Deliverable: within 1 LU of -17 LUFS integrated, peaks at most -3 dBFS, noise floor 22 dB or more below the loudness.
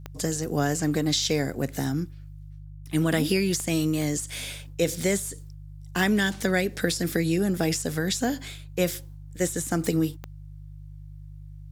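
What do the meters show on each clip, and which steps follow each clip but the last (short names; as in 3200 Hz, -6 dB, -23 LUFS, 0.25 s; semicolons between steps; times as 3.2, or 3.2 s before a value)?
clicks 4; hum 50 Hz; harmonics up to 150 Hz; hum level -40 dBFS; loudness -26.5 LUFS; peak -8.5 dBFS; loudness target -17.0 LUFS
-> de-click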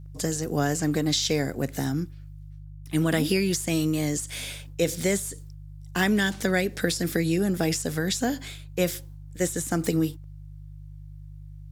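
clicks 0; hum 50 Hz; harmonics up to 150 Hz; hum level -40 dBFS
-> de-hum 50 Hz, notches 3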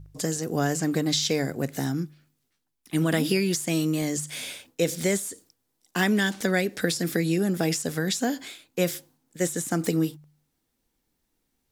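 hum none; loudness -26.5 LUFS; peak -8.5 dBFS; loudness target -17.0 LUFS
-> gain +9.5 dB; limiter -3 dBFS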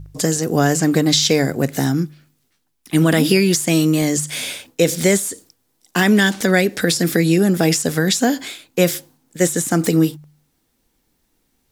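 loudness -17.5 LUFS; peak -3.0 dBFS; noise floor -67 dBFS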